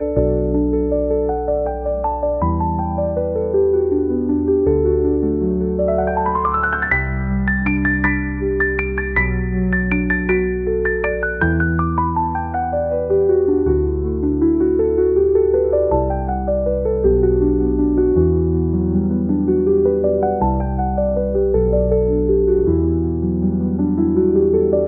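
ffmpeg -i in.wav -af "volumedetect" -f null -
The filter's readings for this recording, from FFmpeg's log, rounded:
mean_volume: -16.8 dB
max_volume: -3.0 dB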